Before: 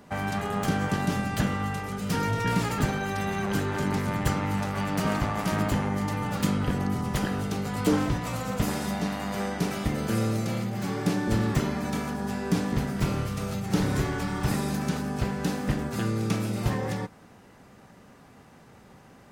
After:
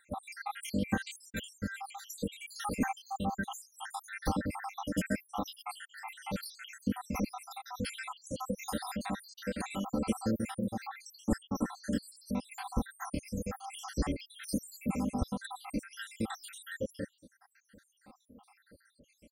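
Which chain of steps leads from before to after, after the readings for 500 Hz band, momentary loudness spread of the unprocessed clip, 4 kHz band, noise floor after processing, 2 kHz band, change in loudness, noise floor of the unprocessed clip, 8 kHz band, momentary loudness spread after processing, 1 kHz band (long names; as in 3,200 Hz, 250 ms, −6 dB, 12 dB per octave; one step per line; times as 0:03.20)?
−10.0 dB, 4 LU, −8.0 dB, −72 dBFS, −9.0 dB, −9.5 dB, −53 dBFS, −6.0 dB, 9 LU, −8.5 dB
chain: time-frequency cells dropped at random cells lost 81%
parametric band 9,300 Hz +9.5 dB 0.2 octaves
comb filter 3.8 ms, depth 75%
level −3 dB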